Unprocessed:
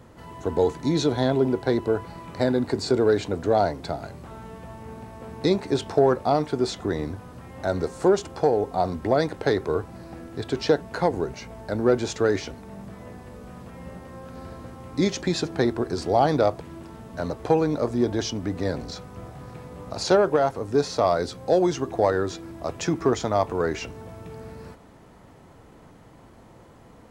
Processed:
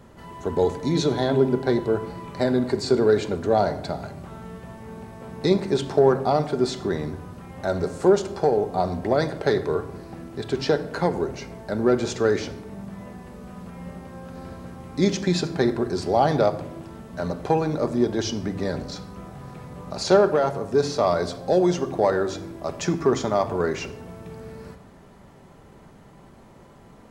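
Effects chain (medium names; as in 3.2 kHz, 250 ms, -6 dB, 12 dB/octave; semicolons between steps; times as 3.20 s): simulated room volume 3100 m³, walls furnished, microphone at 1.2 m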